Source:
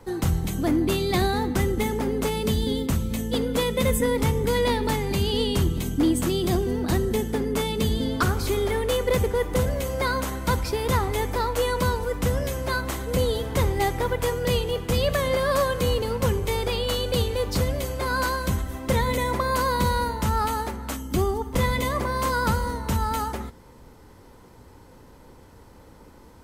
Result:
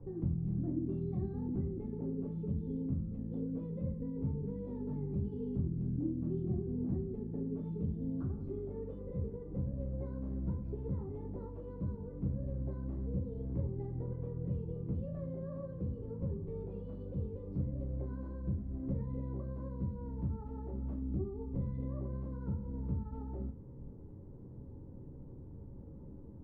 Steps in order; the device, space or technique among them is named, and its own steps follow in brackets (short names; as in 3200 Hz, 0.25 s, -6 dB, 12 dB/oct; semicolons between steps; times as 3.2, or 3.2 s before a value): television next door (compressor 5:1, threshold -35 dBFS, peak gain reduction 16 dB; LPF 250 Hz 12 dB/oct; reverb RT60 0.35 s, pre-delay 3 ms, DRR -2.5 dB)